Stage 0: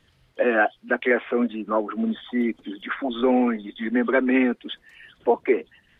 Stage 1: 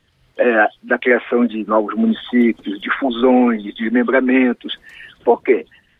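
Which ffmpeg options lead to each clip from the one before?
-af "dynaudnorm=f=100:g=5:m=3.35"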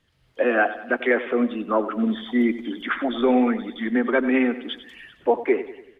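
-af "aecho=1:1:95|190|285|380|475:0.2|0.0998|0.0499|0.0249|0.0125,volume=0.473"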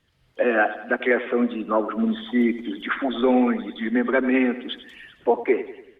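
-ar 48000 -c:a libopus -b:a 64k

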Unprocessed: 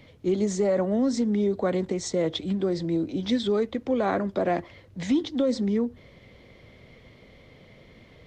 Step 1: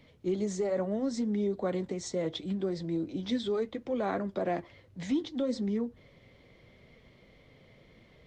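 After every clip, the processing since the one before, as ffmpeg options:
-af "flanger=delay=4.3:depth=3.5:regen=-64:speed=0.72:shape=triangular,volume=0.75"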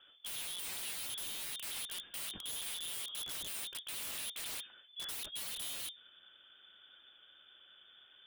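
-af "aeval=exprs='clip(val(0),-1,0.0158)':c=same,lowpass=f=3100:t=q:w=0.5098,lowpass=f=3100:t=q:w=0.6013,lowpass=f=3100:t=q:w=0.9,lowpass=f=3100:t=q:w=2.563,afreqshift=-3600,aeval=exprs='(mod(50.1*val(0)+1,2)-1)/50.1':c=same,volume=0.708"

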